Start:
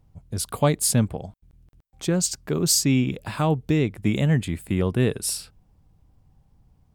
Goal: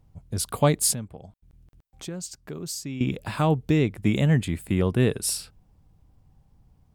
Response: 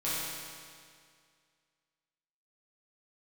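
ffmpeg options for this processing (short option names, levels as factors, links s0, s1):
-filter_complex "[0:a]asettb=1/sr,asplit=3[s0][s1][s2];[s0]atrim=end=0.944[s3];[s1]atrim=start=0.94:end=3.01,asetpts=PTS-STARTPTS,afade=t=in:d=0.004:c=qsin,afade=t=out:st=2.066:d=0.004:c=qsin,acompressor=threshold=0.00708:ratio=2[s4];[s2]atrim=start=3.006[s5];[s3][s4]acrossfade=d=0.004:c1=hsin:c2=qsin[s6];[s6][s5]acrossfade=d=0.004:c1=qsin:c2=hsin"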